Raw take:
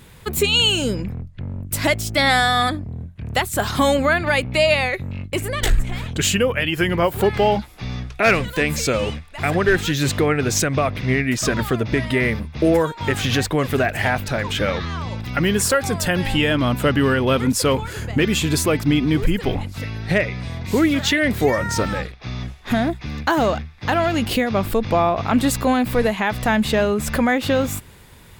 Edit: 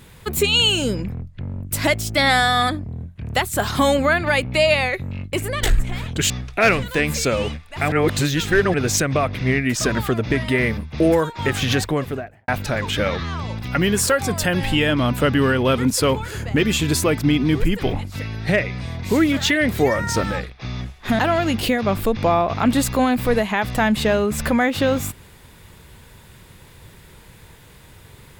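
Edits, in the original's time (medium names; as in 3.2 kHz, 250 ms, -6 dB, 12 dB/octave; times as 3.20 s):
6.30–7.92 s: delete
9.54–10.36 s: reverse
13.39–14.10 s: studio fade out
22.81–23.87 s: delete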